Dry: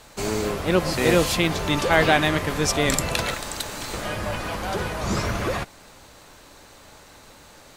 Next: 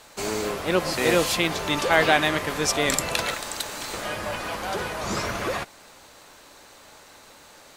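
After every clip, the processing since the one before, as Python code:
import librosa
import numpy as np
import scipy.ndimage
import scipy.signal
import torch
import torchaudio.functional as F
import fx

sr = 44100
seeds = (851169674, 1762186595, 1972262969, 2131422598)

y = fx.low_shelf(x, sr, hz=200.0, db=-11.0)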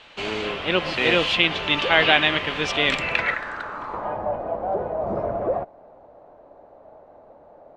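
y = fx.filter_sweep_lowpass(x, sr, from_hz=3000.0, to_hz=660.0, start_s=2.88, end_s=4.4, q=3.7)
y = y * librosa.db_to_amplitude(-1.0)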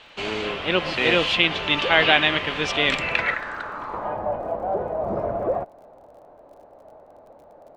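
y = fx.dmg_crackle(x, sr, seeds[0], per_s=39.0, level_db=-47.0)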